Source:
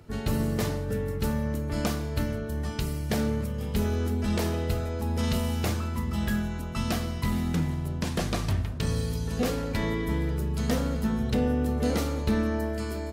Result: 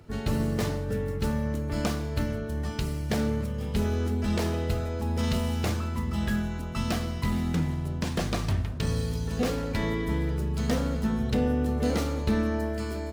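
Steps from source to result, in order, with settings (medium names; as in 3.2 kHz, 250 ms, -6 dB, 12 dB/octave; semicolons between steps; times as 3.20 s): median filter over 3 samples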